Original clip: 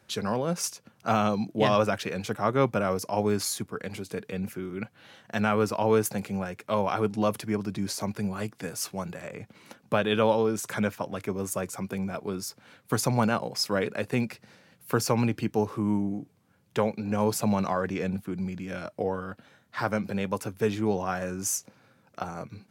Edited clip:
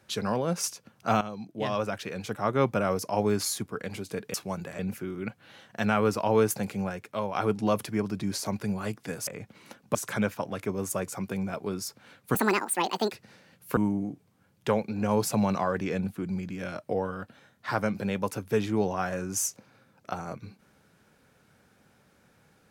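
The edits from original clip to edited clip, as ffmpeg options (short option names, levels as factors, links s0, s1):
-filter_complex "[0:a]asplit=10[s0][s1][s2][s3][s4][s5][s6][s7][s8][s9];[s0]atrim=end=1.21,asetpts=PTS-STARTPTS,afade=t=out:st=1.206:d=0.004:c=hsin:silence=0.211349[s10];[s1]atrim=start=1.21:end=4.342,asetpts=PTS-STARTPTS,afade=t=in:d=1.63:silence=0.211349[s11];[s2]atrim=start=8.818:end=9.272[s12];[s3]atrim=start=4.338:end=6.9,asetpts=PTS-STARTPTS,afade=t=out:st=2.102:d=0.46:silence=0.398107[s13];[s4]atrim=start=6.9:end=8.822,asetpts=PTS-STARTPTS,afade=t=in:d=0.004:c=hsin:silence=0.398107[s14];[s5]atrim=start=9.268:end=9.952[s15];[s6]atrim=start=10.558:end=12.964[s16];[s7]atrim=start=12.96:end=14.31,asetpts=PTS-STARTPTS,asetrate=77616,aresample=44100[s17];[s8]atrim=start=14.306:end=14.962[s18];[s9]atrim=start=15.858[s19];[s10][s11]concat=n=2:v=0:a=1[s20];[s20][s12]acrossfade=d=0.004:c1=hsin:c2=hsin[s21];[s13][s14]concat=n=2:v=0:a=1[s22];[s21][s22]acrossfade=d=0.004:c1=hsin:c2=hsin[s23];[s23][s15]acrossfade=d=0.004:c1=hsin:c2=hsin[s24];[s24][s16]acrossfade=d=0.004:c1=hsin:c2=hsin[s25];[s25][s17]acrossfade=d=0.004:c1=hsin:c2=hsin[s26];[s26][s18]acrossfade=d=0.004:c1=hsin:c2=hsin[s27];[s27][s19]acrossfade=d=0.004:c1=hsin:c2=hsin"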